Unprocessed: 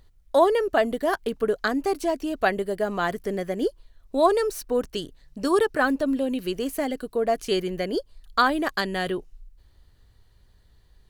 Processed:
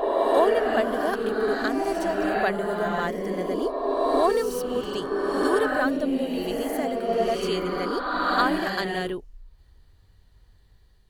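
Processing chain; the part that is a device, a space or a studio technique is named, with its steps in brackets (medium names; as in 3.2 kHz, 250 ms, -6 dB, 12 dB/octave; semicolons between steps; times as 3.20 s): reverse reverb (reverse; reverberation RT60 2.8 s, pre-delay 38 ms, DRR -1.5 dB; reverse); trim -3.5 dB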